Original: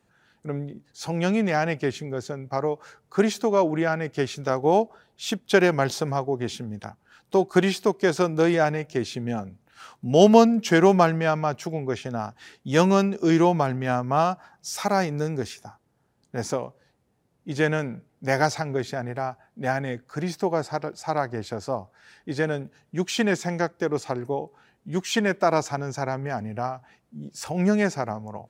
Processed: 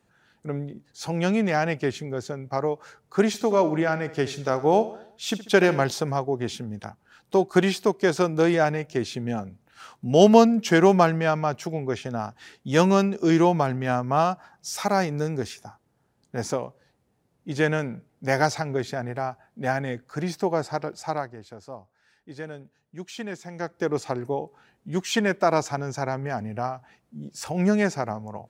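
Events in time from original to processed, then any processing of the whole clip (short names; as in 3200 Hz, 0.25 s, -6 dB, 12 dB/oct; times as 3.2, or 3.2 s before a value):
3.27–5.85 feedback echo 71 ms, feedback 49%, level -15 dB
21.03–23.85 dip -11.5 dB, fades 0.32 s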